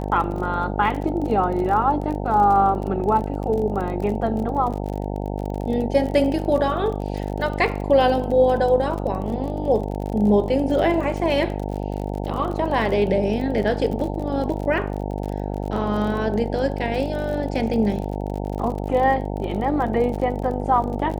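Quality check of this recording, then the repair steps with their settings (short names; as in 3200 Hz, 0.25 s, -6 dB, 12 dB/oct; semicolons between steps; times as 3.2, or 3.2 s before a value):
buzz 50 Hz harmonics 18 -27 dBFS
crackle 37/s -29 dBFS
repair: de-click; de-hum 50 Hz, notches 18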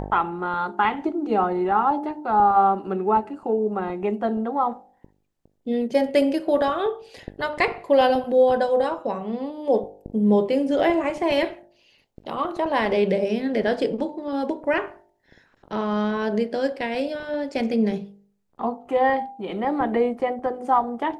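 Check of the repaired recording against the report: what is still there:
none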